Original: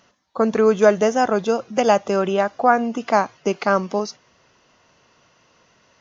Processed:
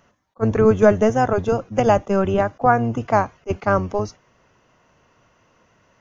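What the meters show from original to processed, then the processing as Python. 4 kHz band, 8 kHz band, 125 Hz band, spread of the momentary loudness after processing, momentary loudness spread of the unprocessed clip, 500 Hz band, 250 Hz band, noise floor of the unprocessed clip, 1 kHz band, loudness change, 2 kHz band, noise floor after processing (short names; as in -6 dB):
-7.0 dB, n/a, +10.0 dB, 10 LU, 9 LU, 0.0 dB, +1.5 dB, -59 dBFS, -0.5 dB, 0.0 dB, -1.5 dB, -61 dBFS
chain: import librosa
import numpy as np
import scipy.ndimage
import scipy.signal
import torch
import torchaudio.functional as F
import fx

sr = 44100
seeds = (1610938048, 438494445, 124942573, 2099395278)

y = fx.octave_divider(x, sr, octaves=1, level_db=-1.0)
y = fx.peak_eq(y, sr, hz=4400.0, db=-10.5, octaves=1.1)
y = fx.attack_slew(y, sr, db_per_s=600.0)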